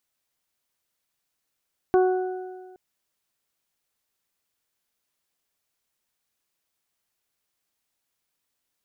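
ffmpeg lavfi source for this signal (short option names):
-f lavfi -i "aevalsrc='0.188*pow(10,-3*t/1.54)*sin(2*PI*370*t)+0.0841*pow(10,-3*t/1.62)*sin(2*PI*740*t)+0.0282*pow(10,-3*t/0.54)*sin(2*PI*1110*t)+0.0237*pow(10,-3*t/1.47)*sin(2*PI*1480*t)':d=0.82:s=44100"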